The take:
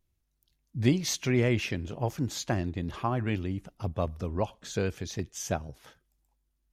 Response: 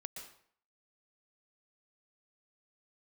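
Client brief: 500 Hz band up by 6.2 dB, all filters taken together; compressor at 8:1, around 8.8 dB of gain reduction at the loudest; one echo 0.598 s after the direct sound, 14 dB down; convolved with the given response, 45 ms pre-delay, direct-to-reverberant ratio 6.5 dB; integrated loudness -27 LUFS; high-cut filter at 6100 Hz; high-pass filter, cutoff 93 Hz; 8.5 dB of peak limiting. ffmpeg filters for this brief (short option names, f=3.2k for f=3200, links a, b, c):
-filter_complex "[0:a]highpass=93,lowpass=6.1k,equalizer=f=500:t=o:g=8,acompressor=threshold=-26dB:ratio=8,alimiter=limit=-22.5dB:level=0:latency=1,aecho=1:1:598:0.2,asplit=2[a][b];[1:a]atrim=start_sample=2205,adelay=45[c];[b][c]afir=irnorm=-1:irlink=0,volume=-3.5dB[d];[a][d]amix=inputs=2:normalize=0,volume=8dB"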